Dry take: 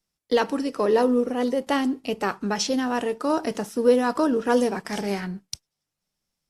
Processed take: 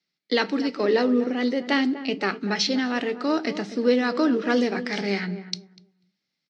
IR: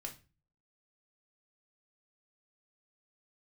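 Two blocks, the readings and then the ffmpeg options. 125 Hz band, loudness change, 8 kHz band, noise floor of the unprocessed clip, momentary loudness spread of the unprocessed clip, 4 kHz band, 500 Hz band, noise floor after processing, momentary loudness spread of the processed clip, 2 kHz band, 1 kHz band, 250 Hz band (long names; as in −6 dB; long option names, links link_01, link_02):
+1.0 dB, 0.0 dB, −4.5 dB, −84 dBFS, 9 LU, +4.5 dB, −2.0 dB, −81 dBFS, 6 LU, +4.5 dB, −3.5 dB, +1.5 dB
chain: -filter_complex "[0:a]highpass=frequency=160:width=0.5412,highpass=frequency=160:width=1.3066,equalizer=frequency=490:width_type=q:width=4:gain=-5,equalizer=frequency=720:width_type=q:width=4:gain=-4,equalizer=frequency=1000:width_type=q:width=4:gain=-9,equalizer=frequency=2100:width_type=q:width=4:gain=8,equalizer=frequency=4200:width_type=q:width=4:gain=8,lowpass=frequency=5300:width=0.5412,lowpass=frequency=5300:width=1.3066,asplit=2[link_01][link_02];[link_02]adelay=245,lowpass=frequency=1000:poles=1,volume=-11.5dB,asplit=2[link_03][link_04];[link_04]adelay=245,lowpass=frequency=1000:poles=1,volume=0.21,asplit=2[link_05][link_06];[link_06]adelay=245,lowpass=frequency=1000:poles=1,volume=0.21[link_07];[link_01][link_03][link_05][link_07]amix=inputs=4:normalize=0,asplit=2[link_08][link_09];[1:a]atrim=start_sample=2205,asetrate=61740,aresample=44100[link_10];[link_09][link_10]afir=irnorm=-1:irlink=0,volume=-6dB[link_11];[link_08][link_11]amix=inputs=2:normalize=0"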